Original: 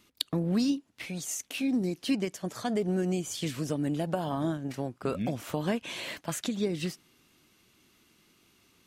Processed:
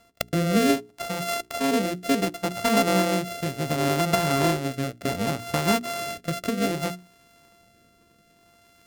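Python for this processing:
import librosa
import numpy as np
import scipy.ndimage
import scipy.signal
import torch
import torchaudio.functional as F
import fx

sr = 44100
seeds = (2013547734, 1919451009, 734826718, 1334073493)

y = np.r_[np.sort(x[:len(x) // 64 * 64].reshape(-1, 64), axis=1).ravel(), x[len(x) // 64 * 64:]]
y = fx.rotary(y, sr, hz=0.65)
y = fx.hum_notches(y, sr, base_hz=60, count=7)
y = y * 10.0 ** (9.0 / 20.0)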